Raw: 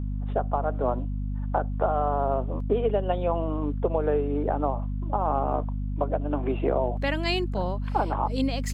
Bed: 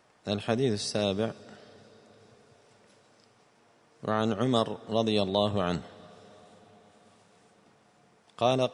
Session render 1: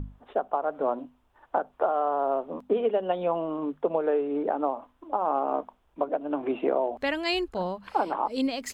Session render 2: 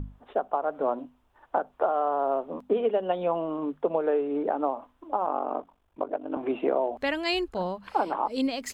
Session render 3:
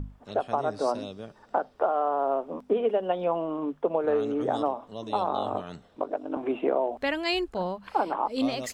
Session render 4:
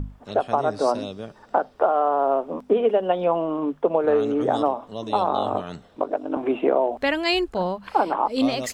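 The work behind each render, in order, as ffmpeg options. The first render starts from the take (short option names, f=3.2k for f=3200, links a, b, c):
-af "bandreject=f=50:t=h:w=6,bandreject=f=100:t=h:w=6,bandreject=f=150:t=h:w=6,bandreject=f=200:t=h:w=6,bandreject=f=250:t=h:w=6"
-filter_complex "[0:a]asettb=1/sr,asplit=3[a][b][c];[a]atrim=end=5.254[d];[b]atrim=start=5.25:end=6.37,asetpts=PTS-STARTPTS,afade=t=in:d=0.004:c=qsin,afade=t=out:st=1.116:d=0.004:c=qsin,aeval=exprs='val(0)*sin(2*PI*24*n/s)':c=same[e];[c]atrim=start=6.366[f];[d][e]acrossfade=d=0.004:c1=hsin:c2=qsin[g];[g][f]acrossfade=d=0.004:c1=qsin:c2=hsin"
-filter_complex "[1:a]volume=-11.5dB[a];[0:a][a]amix=inputs=2:normalize=0"
-af "volume=5.5dB"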